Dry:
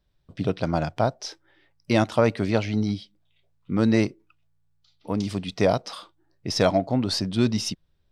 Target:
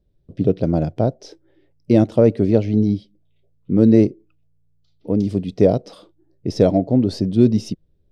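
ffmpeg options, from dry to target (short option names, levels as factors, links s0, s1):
-af "lowshelf=f=690:t=q:w=1.5:g=14,volume=0.422"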